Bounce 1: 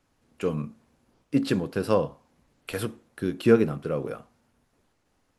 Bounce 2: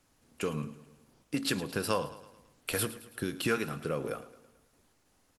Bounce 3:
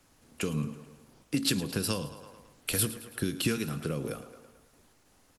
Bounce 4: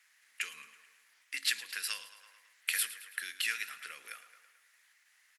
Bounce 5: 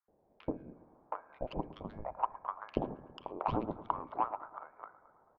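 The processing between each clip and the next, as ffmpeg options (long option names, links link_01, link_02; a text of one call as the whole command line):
ffmpeg -i in.wav -filter_complex "[0:a]acrossover=split=940[link_01][link_02];[link_01]acompressor=threshold=-30dB:ratio=6[link_03];[link_03][link_02]amix=inputs=2:normalize=0,aemphasis=mode=production:type=cd,aecho=1:1:109|218|327|436|545:0.158|0.0824|0.0429|0.0223|0.0116" out.wav
ffmpeg -i in.wav -filter_complex "[0:a]acrossover=split=310|3000[link_01][link_02][link_03];[link_02]acompressor=threshold=-44dB:ratio=6[link_04];[link_01][link_04][link_03]amix=inputs=3:normalize=0,volume=5.5dB" out.wav
ffmpeg -i in.wav -af "highpass=frequency=1900:width_type=q:width=4.6,volume=-4dB" out.wav
ffmpeg -i in.wav -filter_complex "[0:a]lowpass=frequency=2300:width_type=q:width=0.5098,lowpass=frequency=2300:width_type=q:width=0.6013,lowpass=frequency=2300:width_type=q:width=0.9,lowpass=frequency=2300:width_type=q:width=2.563,afreqshift=-2700,adynamicsmooth=sensitivity=1.5:basefreq=810,acrossover=split=650|2100[link_01][link_02][link_03];[link_01]adelay=80[link_04];[link_02]adelay=720[link_05];[link_04][link_05][link_03]amix=inputs=3:normalize=0,volume=10dB" out.wav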